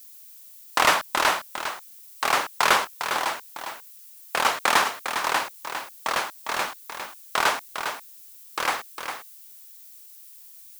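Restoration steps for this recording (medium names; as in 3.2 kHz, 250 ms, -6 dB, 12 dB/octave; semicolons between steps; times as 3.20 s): noise print and reduce 23 dB; inverse comb 404 ms -8 dB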